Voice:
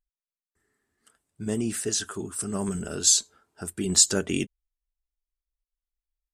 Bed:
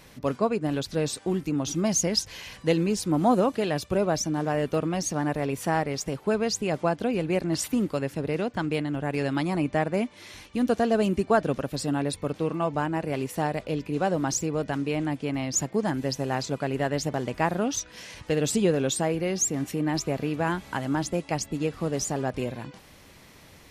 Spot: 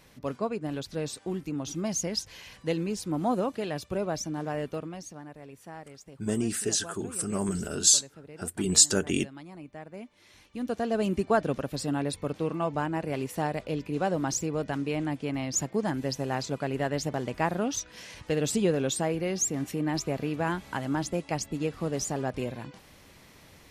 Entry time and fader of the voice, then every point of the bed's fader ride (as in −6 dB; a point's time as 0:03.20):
4.80 s, −0.5 dB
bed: 0:04.61 −6 dB
0:05.29 −18.5 dB
0:09.79 −18.5 dB
0:11.14 −2.5 dB